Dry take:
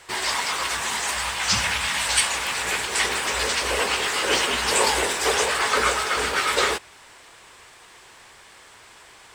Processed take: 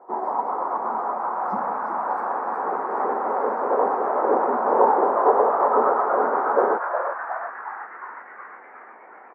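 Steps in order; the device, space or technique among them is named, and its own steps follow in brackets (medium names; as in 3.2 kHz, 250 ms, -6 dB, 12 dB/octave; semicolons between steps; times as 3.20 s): elliptic band-pass 220–970 Hz, stop band 50 dB; bass shelf 320 Hz -4 dB; inside a helmet (treble shelf 3.9 kHz -9 dB; small resonant body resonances 750/1300 Hz, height 8 dB); frequency-shifting echo 363 ms, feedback 61%, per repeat +130 Hz, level -6 dB; trim +7 dB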